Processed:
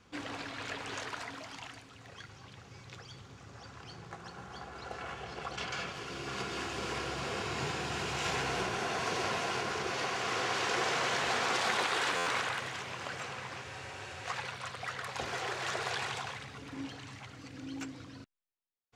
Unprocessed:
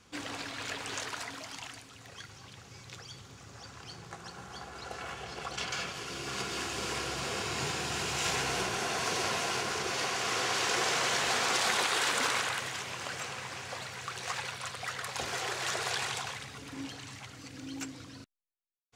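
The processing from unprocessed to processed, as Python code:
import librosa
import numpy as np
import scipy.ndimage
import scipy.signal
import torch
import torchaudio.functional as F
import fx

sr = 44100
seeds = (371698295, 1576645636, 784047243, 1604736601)

y = fx.lowpass(x, sr, hz=2900.0, slope=6)
y = fx.spec_freeze(y, sr, seeds[0], at_s=13.66, hold_s=0.59)
y = fx.buffer_glitch(y, sr, at_s=(12.16,), block=512, repeats=8)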